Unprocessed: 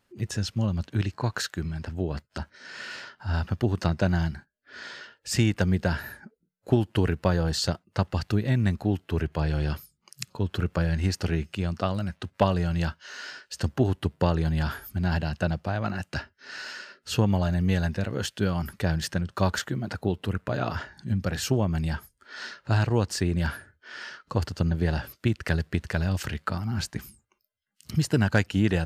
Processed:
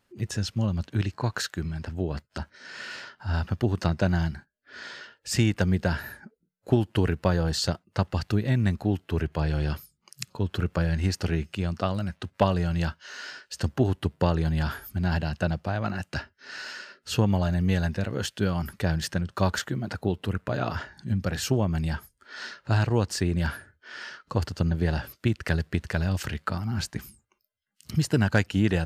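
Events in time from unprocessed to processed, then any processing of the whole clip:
no events

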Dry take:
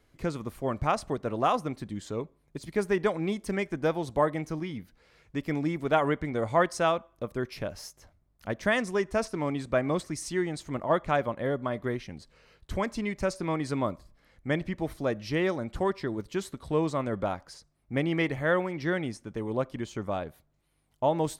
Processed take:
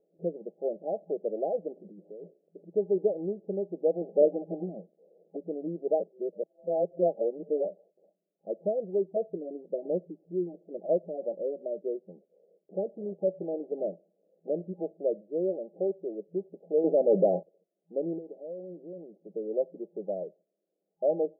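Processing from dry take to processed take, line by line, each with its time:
1.75–2.63 s: compressor with a negative ratio -40 dBFS
4.01–5.37 s: square wave that keeps the level
6.00–7.65 s: reverse
8.82–11.85 s: LFO notch saw down 2.9 Hz 370–3500 Hz
12.97–14.53 s: block-companded coder 3-bit
15.21–16.34 s: bass shelf 130 Hz -10.5 dB
16.84–17.44 s: waveshaping leveller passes 5
18.18–19.35 s: compression 16:1, threshold -34 dBFS
whole clip: FFT band-pass 170–810 Hz; comb 2 ms, depth 87%; trim -2.5 dB

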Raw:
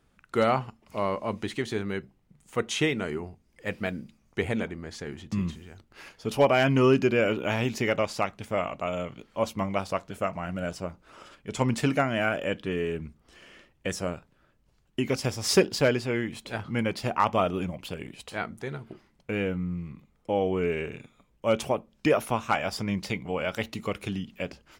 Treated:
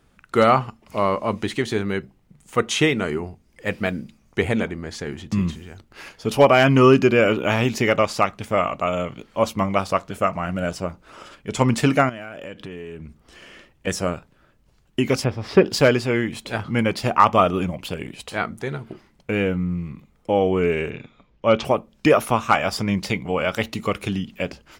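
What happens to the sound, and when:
12.09–13.87 s: compression, threshold -39 dBFS
15.24–15.66 s: distance through air 410 m
20.90–21.65 s: low-pass 5.1 kHz 24 dB/octave
whole clip: dynamic bell 1.2 kHz, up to +6 dB, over -47 dBFS, Q 7.5; trim +7 dB

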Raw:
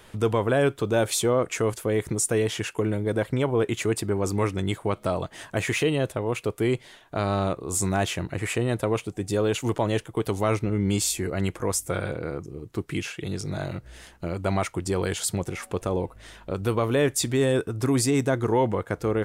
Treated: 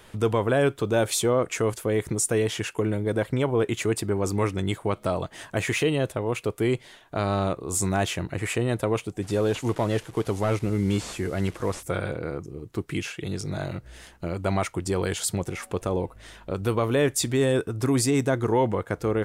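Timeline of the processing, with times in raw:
9.22–11.83 s: one-bit delta coder 64 kbps, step -42 dBFS

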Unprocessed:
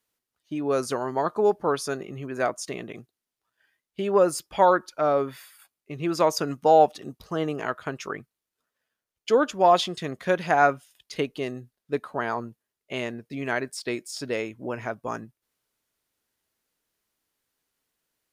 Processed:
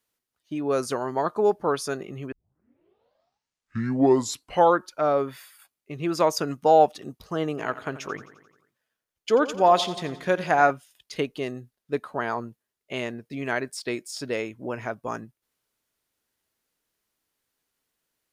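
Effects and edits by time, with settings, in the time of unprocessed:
2.32 s: tape start 2.52 s
7.49–10.71 s: feedback delay 87 ms, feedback 59%, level -15 dB

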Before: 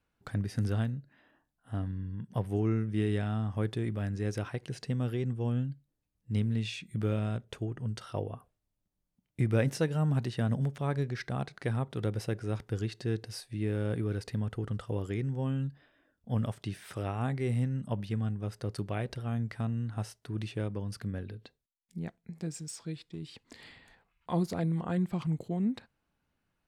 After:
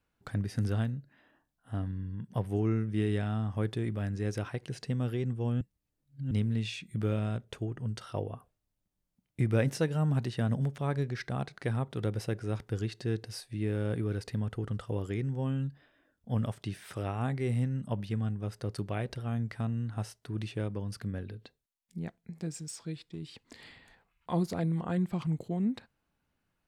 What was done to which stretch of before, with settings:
5.61–6.31 s: reverse

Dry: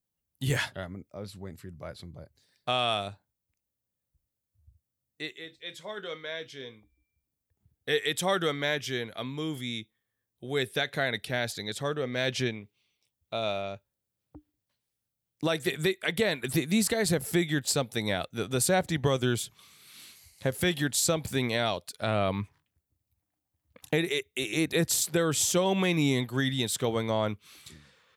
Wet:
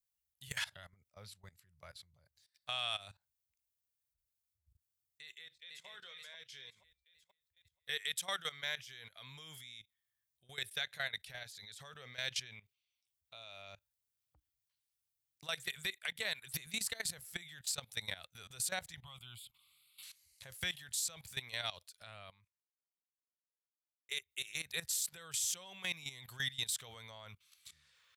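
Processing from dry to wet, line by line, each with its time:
5.22–5.87 s: echo throw 480 ms, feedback 35%, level -0.5 dB
19.01–20.03 s: static phaser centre 1.7 kHz, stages 6
22.04–24.09 s: fade out exponential
whole clip: amplifier tone stack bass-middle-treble 10-0-10; level held to a coarse grid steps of 18 dB; peak limiter -27 dBFS; trim +1.5 dB

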